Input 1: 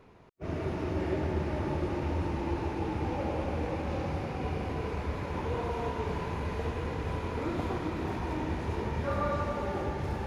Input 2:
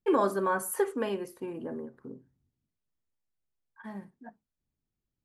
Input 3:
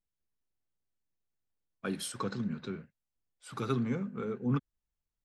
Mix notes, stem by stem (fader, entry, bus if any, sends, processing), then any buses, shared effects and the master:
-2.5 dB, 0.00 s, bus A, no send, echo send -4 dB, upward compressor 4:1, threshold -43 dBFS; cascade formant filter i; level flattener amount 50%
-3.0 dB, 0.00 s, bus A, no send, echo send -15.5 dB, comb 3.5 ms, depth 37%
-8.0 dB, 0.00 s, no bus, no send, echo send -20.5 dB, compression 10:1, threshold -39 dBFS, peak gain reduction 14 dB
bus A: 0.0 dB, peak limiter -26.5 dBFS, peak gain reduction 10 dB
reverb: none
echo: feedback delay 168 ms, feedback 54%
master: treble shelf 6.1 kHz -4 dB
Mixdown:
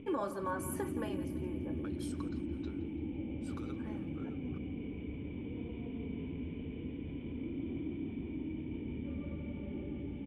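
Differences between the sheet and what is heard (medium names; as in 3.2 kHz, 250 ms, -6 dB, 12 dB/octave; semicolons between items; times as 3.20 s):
stem 2 -3.0 dB -> -9.5 dB; master: missing treble shelf 6.1 kHz -4 dB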